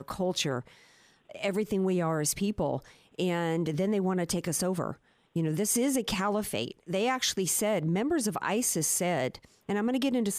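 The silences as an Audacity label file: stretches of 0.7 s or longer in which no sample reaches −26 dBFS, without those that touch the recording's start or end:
0.580000	1.430000	silence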